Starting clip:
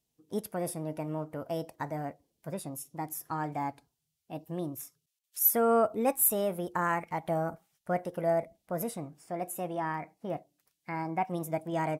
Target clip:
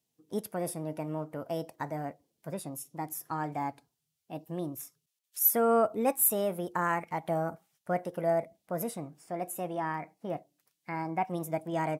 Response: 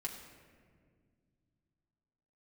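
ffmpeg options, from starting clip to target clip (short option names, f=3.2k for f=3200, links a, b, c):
-af "highpass=100"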